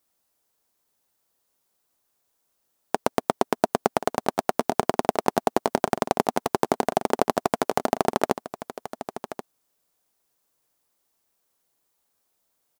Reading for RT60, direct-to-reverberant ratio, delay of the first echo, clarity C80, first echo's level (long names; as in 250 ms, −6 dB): no reverb audible, no reverb audible, 1,081 ms, no reverb audible, −12.5 dB